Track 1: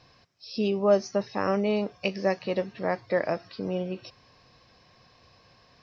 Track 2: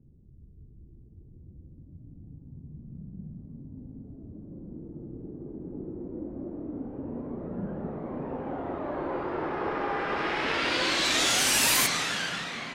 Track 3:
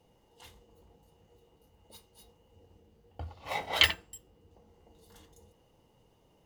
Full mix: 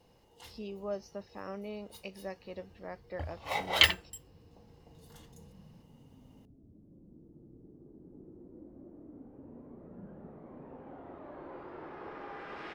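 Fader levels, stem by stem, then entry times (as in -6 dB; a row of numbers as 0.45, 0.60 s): -16.0, -14.5, +1.0 dB; 0.00, 2.40, 0.00 s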